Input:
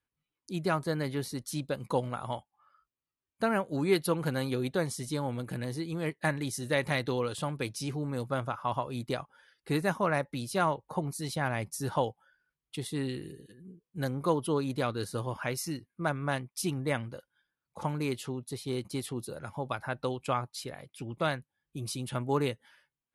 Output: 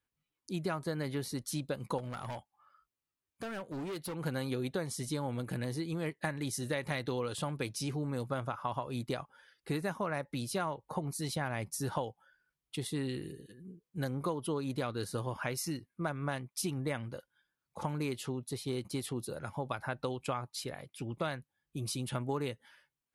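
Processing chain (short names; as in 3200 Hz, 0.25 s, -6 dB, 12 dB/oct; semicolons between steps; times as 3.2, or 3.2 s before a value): compressor 6:1, threshold -31 dBFS, peak gain reduction 10.5 dB; 1.98–4.15 hard clip -36.5 dBFS, distortion -17 dB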